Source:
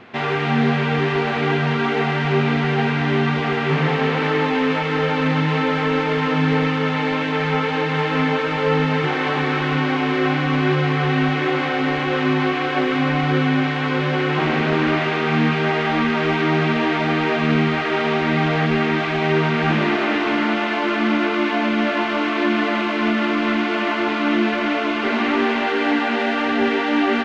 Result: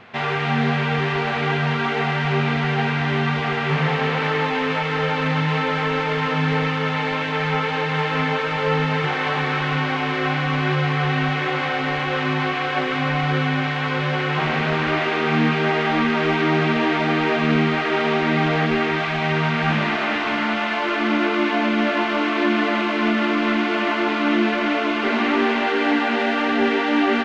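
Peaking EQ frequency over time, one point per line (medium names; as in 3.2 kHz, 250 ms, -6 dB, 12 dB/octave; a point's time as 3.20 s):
peaking EQ -10 dB 0.69 oct
14.83 s 310 Hz
15.32 s 88 Hz
18.59 s 88 Hz
19.10 s 350 Hz
20.75 s 350 Hz
21.31 s 89 Hz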